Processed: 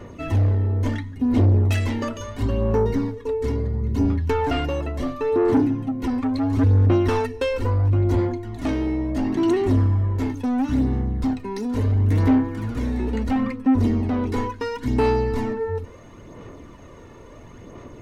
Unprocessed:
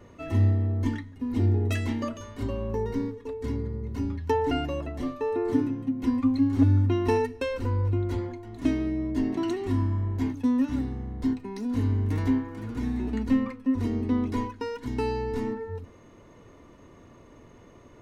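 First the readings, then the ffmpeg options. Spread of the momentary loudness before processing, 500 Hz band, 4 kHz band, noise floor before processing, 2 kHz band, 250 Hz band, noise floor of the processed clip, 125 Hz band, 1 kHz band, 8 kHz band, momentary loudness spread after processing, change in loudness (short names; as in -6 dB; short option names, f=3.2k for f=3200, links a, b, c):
9 LU, +6.5 dB, +5.5 dB, -52 dBFS, +6.0 dB, +4.5 dB, -43 dBFS, +6.5 dB, +6.0 dB, n/a, 9 LU, +5.5 dB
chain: -af "asoftclip=type=tanh:threshold=-24dB,aphaser=in_gain=1:out_gain=1:delay=2.3:decay=0.39:speed=0.73:type=sinusoidal,volume=7.5dB"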